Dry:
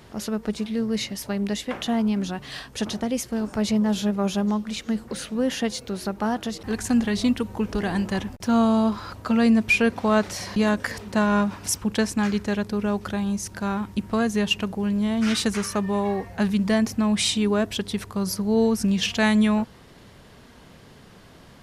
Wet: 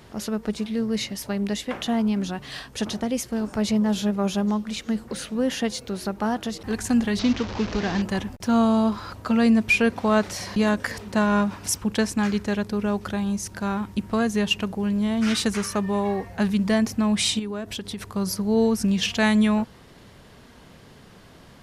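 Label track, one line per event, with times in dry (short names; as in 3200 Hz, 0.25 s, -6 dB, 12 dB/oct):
7.190000	8.020000	delta modulation 32 kbps, step -26.5 dBFS
17.390000	18.050000	compressor 5:1, threshold -28 dBFS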